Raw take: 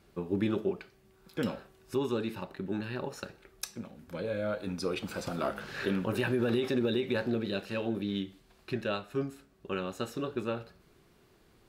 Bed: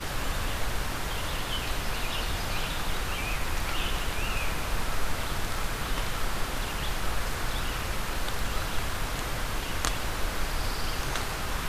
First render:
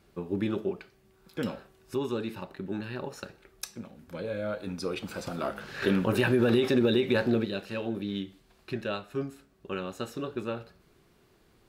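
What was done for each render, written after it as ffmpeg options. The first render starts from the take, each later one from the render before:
-filter_complex "[0:a]asettb=1/sr,asplit=3[a][b][c];[a]atrim=end=5.824[d];[b]atrim=start=5.82:end=7.45,asetpts=PTS-STARTPTS,afade=t=in:d=0.004:c=qsin,afade=t=out:st=1.626:d=0.004:c=qsin,acontrast=34[e];[c]atrim=start=7.446[f];[d][e]acrossfade=d=0.004:c1=hsin:c2=qsin[g];[g][f]acrossfade=d=0.004:c1=qsin:c2=hsin"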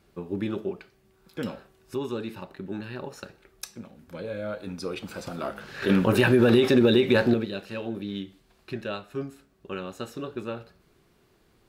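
-filter_complex "[0:a]asettb=1/sr,asplit=3[a][b][c];[a]atrim=end=5.894[d];[b]atrim=start=5.89:end=7.34,asetpts=PTS-STARTPTS,afade=t=in:d=0.004:c=qsin,afade=t=out:st=1.446:d=0.004:c=qsin,acontrast=29[e];[c]atrim=start=7.336[f];[d][e]acrossfade=d=0.004:c1=hsin:c2=qsin[g];[g][f]acrossfade=d=0.004:c1=qsin:c2=hsin"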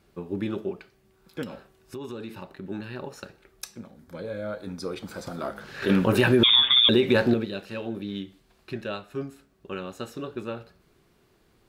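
-filter_complex "[0:a]asettb=1/sr,asplit=3[a][b][c];[a]atrim=end=1.434[d];[b]atrim=start=1.43:end=2.64,asetpts=PTS-STARTPTS,afade=t=in:d=0.004:c=qsin,afade=t=out:st=1.206:d=0.004:c=qsin,acompressor=threshold=-32dB:ratio=6:attack=3.2:release=140:knee=1:detection=peak[e];[c]atrim=start=2.636[f];[d][e]acrossfade=d=0.004:c1=hsin:c2=qsin[g];[g][f]acrossfade=d=0.004:c1=qsin:c2=hsin,asettb=1/sr,asplit=3[h][i][j];[h]atrim=end=3.814[k];[i]atrim=start=3.81:end=5.65,asetpts=PTS-STARTPTS,afade=t=in:d=0.004:c=qsin,afade=t=out:st=1.836:d=0.004:c=qsin,equalizer=f=2.7k:w=5.7:g=-10.5[l];[j]atrim=start=5.646[m];[k][l]acrossfade=d=0.004:c1=hsin:c2=qsin[n];[n][m]acrossfade=d=0.004:c1=qsin:c2=hsin,asettb=1/sr,asplit=3[o][p][q];[o]atrim=end=6.434[r];[p]atrim=start=6.43:end=6.89,asetpts=PTS-STARTPTS,afade=t=in:d=0.004:c=qsin,afade=t=out:st=0.456:d=0.004:c=qsin,lowpass=f=3.2k:t=q:w=0.5098,lowpass=f=3.2k:t=q:w=0.6013,lowpass=f=3.2k:t=q:w=0.9,lowpass=f=3.2k:t=q:w=2.563,afreqshift=-3800[s];[q]atrim=start=6.886[t];[r][s]acrossfade=d=0.004:c1=hsin:c2=qsin[u];[u][t]acrossfade=d=0.004:c1=qsin:c2=hsin"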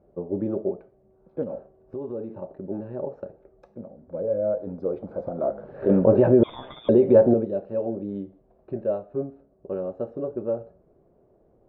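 -af "lowpass=f=600:t=q:w=3.6"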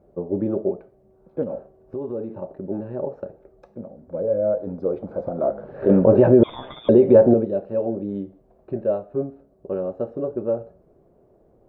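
-af "volume=3.5dB,alimiter=limit=-3dB:level=0:latency=1"

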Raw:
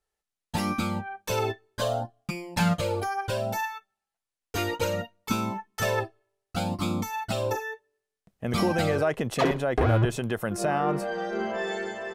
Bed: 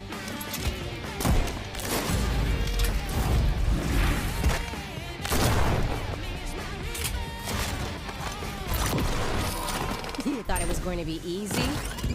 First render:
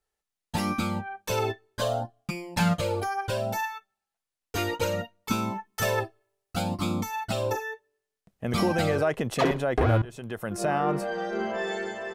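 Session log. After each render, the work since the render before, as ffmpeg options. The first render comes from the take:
-filter_complex "[0:a]asettb=1/sr,asplit=3[a][b][c];[a]atrim=end=5.654[d];[b]atrim=start=5.65:end=6.62,asetpts=PTS-STARTPTS,afade=t=in:d=0.004:c=qsin,afade=t=out:st=0.966:d=0.004:c=qsin,highshelf=f=9.1k:g=6[e];[c]atrim=start=6.616[f];[d][e]acrossfade=d=0.004:c1=hsin:c2=qsin[g];[g][f]acrossfade=d=0.004:c1=qsin:c2=hsin,asplit=2[h][i];[h]atrim=end=10.02,asetpts=PTS-STARTPTS,afade=t=out:st=10.016:d=0.004:c=hsin:silence=0.1[j];[i]atrim=start=10.02,asetpts=PTS-STARTPTS,afade=t=in:d=0.67:silence=0.1[k];[j][k]concat=n=2:v=0:a=1"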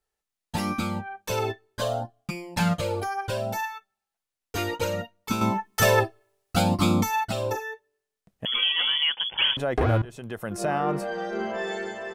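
-filter_complex "[0:a]asettb=1/sr,asplit=3[a][b][c];[a]atrim=end=5.414[d];[b]atrim=start=5.41:end=7.25,asetpts=PTS-STARTPTS,afade=t=in:d=0.004:c=qsin,afade=t=out:st=1.836:d=0.004:c=qsin,acontrast=77[e];[c]atrim=start=7.246[f];[d][e]acrossfade=d=0.004:c1=hsin:c2=qsin[g];[g][f]acrossfade=d=0.004:c1=qsin:c2=hsin,asettb=1/sr,asplit=3[h][i][j];[h]atrim=end=8.454[k];[i]atrim=start=8.45:end=9.57,asetpts=PTS-STARTPTS,afade=t=in:d=0.004:c=qsin,afade=t=out:st=1.116:d=0.004:c=qsin,lowpass=f=3k:t=q:w=0.5098,lowpass=f=3k:t=q:w=0.6013,lowpass=f=3k:t=q:w=0.9,lowpass=f=3k:t=q:w=2.563,afreqshift=-3500[l];[j]atrim=start=9.566[m];[k][l]acrossfade=d=0.004:c1=hsin:c2=qsin[n];[n][m]acrossfade=d=0.004:c1=qsin:c2=hsin"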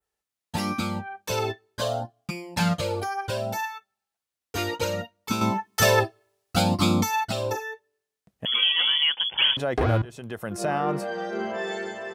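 -af "highpass=49,adynamicequalizer=threshold=0.00891:dfrequency=4700:dqfactor=1.3:tfrequency=4700:tqfactor=1.3:attack=5:release=100:ratio=0.375:range=2.5:mode=boostabove:tftype=bell"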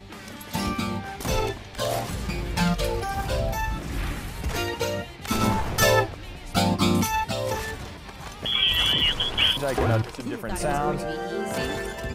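-filter_complex "[1:a]volume=-5dB[a];[0:a][a]amix=inputs=2:normalize=0"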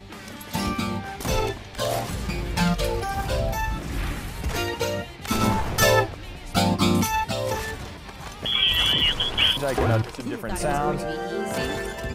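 -af "volume=1dB"

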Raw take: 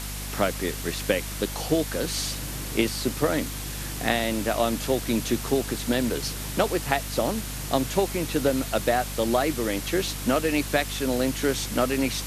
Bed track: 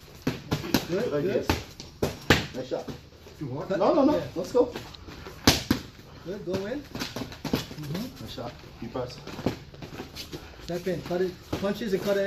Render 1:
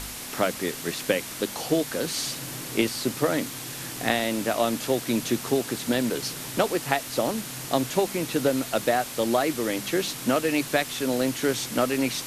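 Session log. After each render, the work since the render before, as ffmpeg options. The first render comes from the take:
-af "bandreject=f=50:t=h:w=4,bandreject=f=100:t=h:w=4,bandreject=f=150:t=h:w=4,bandreject=f=200:t=h:w=4"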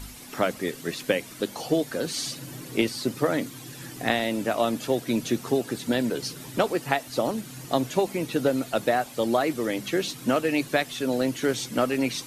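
-af "afftdn=nr=11:nf=-37"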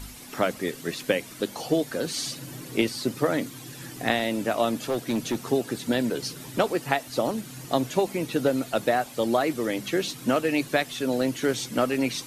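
-filter_complex "[0:a]asettb=1/sr,asplit=3[a][b][c];[a]atrim=end=4.734[d];[b]atrim=start=4.73:end=5.46,asetpts=PTS-STARTPTS,afade=t=in:d=0.004:c=qsin,afade=t=out:st=0.726:d=0.004:c=qsin,volume=21dB,asoftclip=hard,volume=-21dB[e];[c]atrim=start=5.456[f];[d][e]acrossfade=d=0.004:c1=hsin:c2=qsin[g];[g][f]acrossfade=d=0.004:c1=qsin:c2=hsin"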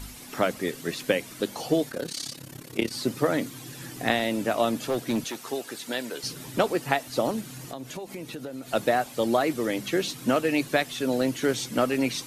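-filter_complex "[0:a]asplit=3[a][b][c];[a]afade=t=out:st=1.89:d=0.02[d];[b]tremolo=f=34:d=0.857,afade=t=in:st=1.89:d=0.02,afade=t=out:st=2.91:d=0.02[e];[c]afade=t=in:st=2.91:d=0.02[f];[d][e][f]amix=inputs=3:normalize=0,asettb=1/sr,asplit=3[g][h][i];[g]atrim=end=5.244[j];[h]atrim=start=5.24:end=6.24,asetpts=PTS-STARTPTS,afade=t=in:d=0.004:c=qsin,afade=t=out:st=0.996:d=0.004:c=qsin,highpass=f=850:p=1[k];[i]atrim=start=6.236[l];[j][k]acrossfade=d=0.004:c1=hsin:c2=qsin[m];[m][l]acrossfade=d=0.004:c1=qsin:c2=hsin,asettb=1/sr,asplit=3[n][o][p];[n]atrim=end=7.554[q];[o]atrim=start=7.55:end=8.7,asetpts=PTS-STARTPTS,afade=t=in:d=0.004:c=qsin,afade=t=out:st=1.146:d=0.004:c=qsin,acompressor=threshold=-35dB:ratio=4:attack=3.2:release=140:knee=1:detection=peak[r];[p]atrim=start=8.696[s];[q][r]acrossfade=d=0.004:c1=hsin:c2=qsin[t];[t][s]acrossfade=d=0.004:c1=qsin:c2=hsin"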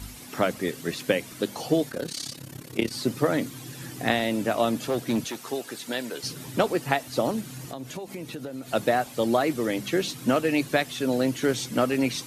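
-af "highpass=54,lowshelf=f=140:g=5.5"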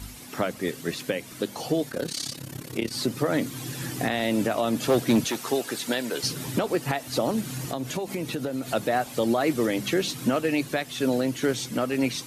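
-af "dynaudnorm=f=770:g=7:m=11.5dB,alimiter=limit=-14dB:level=0:latency=1:release=247"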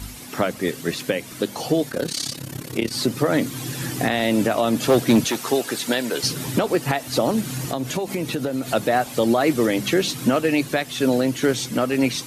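-af "volume=5dB"

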